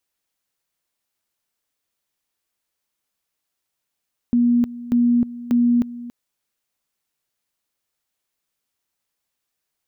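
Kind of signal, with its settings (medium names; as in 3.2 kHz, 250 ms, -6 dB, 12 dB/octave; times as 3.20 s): two-level tone 240 Hz -13 dBFS, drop 17 dB, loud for 0.31 s, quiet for 0.28 s, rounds 3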